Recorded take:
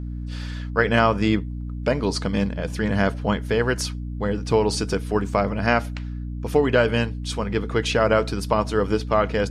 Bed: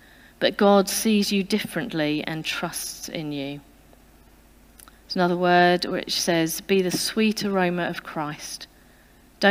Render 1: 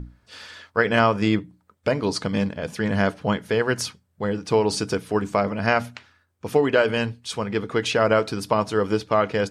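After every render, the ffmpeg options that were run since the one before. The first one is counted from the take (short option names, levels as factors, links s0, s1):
-af "bandreject=f=60:t=h:w=6,bandreject=f=120:t=h:w=6,bandreject=f=180:t=h:w=6,bandreject=f=240:t=h:w=6,bandreject=f=300:t=h:w=6"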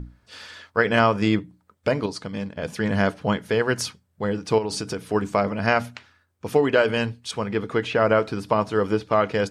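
-filter_complex "[0:a]asettb=1/sr,asplit=3[s0][s1][s2];[s0]atrim=end=4.584[s3];[s1]atrim=start=4.58:end=5.04,asetpts=PTS-STARTPTS,afade=t=in:d=0.004:c=qsin,afade=t=out:st=0.456:d=0.004:c=qsin,acompressor=threshold=0.0562:ratio=3:attack=3.2:release=140:knee=1:detection=peak[s4];[s2]atrim=start=5.036[s5];[s3][s4]acrossfade=d=0.004:c1=hsin:c2=qsin[s6];[s6][s5]acrossfade=d=0.004:c1=qsin:c2=hsin,asettb=1/sr,asplit=3[s7][s8][s9];[s7]atrim=end=7.314[s10];[s8]atrim=start=7.31:end=9.13,asetpts=PTS-STARTPTS,afade=t=in:d=0.004:c=qsin,afade=t=out:st=1.816:d=0.004:c=qsin,acrossover=split=3000[s11][s12];[s12]acompressor=threshold=0.00631:ratio=4:attack=1:release=60[s13];[s11][s13]amix=inputs=2:normalize=0[s14];[s9]atrim=start=9.126[s15];[s10][s14]acrossfade=d=0.004:c1=hsin:c2=qsin[s16];[s16][s15]acrossfade=d=0.004:c1=qsin:c2=hsin,asplit=3[s17][s18][s19];[s17]atrim=end=2.062[s20];[s18]atrim=start=2.058:end=2.572,asetpts=PTS-STARTPTS,volume=0.447[s21];[s19]atrim=start=2.568[s22];[s20][s21]acrossfade=d=0.004:c1=hsin:c2=hsin[s23];[s23][s22]acrossfade=d=0.004:c1=hsin:c2=hsin"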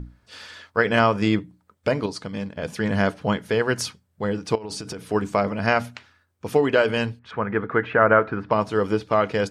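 -filter_complex "[0:a]asettb=1/sr,asplit=3[s0][s1][s2];[s0]atrim=end=4.554[s3];[s1]atrim=start=4.55:end=5.11,asetpts=PTS-STARTPTS,afade=t=in:d=0.004:c=qsin,afade=t=out:st=0.556:d=0.004:c=qsin,acompressor=threshold=0.0398:ratio=16:attack=3.2:release=140:knee=1:detection=peak[s4];[s2]atrim=start=5.106[s5];[s3][s4]acrossfade=d=0.004:c1=hsin:c2=qsin[s6];[s6][s5]acrossfade=d=0.004:c1=qsin:c2=hsin,asettb=1/sr,asplit=3[s7][s8][s9];[s7]atrim=end=7.194[s10];[s8]atrim=start=7.19:end=8.51,asetpts=PTS-STARTPTS,afade=t=in:d=0.004:c=qsin,afade=t=out:st=1.316:d=0.004:c=qsin,lowpass=f=1600:t=q:w=2.3[s11];[s9]atrim=start=8.506[s12];[s10][s11]acrossfade=d=0.004:c1=hsin:c2=qsin[s13];[s13][s12]acrossfade=d=0.004:c1=qsin:c2=hsin"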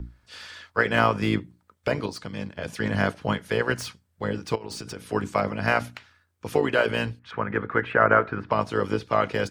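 -filter_complex "[0:a]acrossover=split=120|990|2700[s0][s1][s2][s3];[s1]tremolo=f=56:d=0.919[s4];[s3]asoftclip=type=tanh:threshold=0.02[s5];[s0][s4][s2][s5]amix=inputs=4:normalize=0"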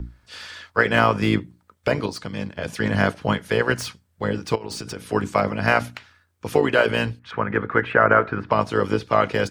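-af "volume=1.58,alimiter=limit=0.794:level=0:latency=1"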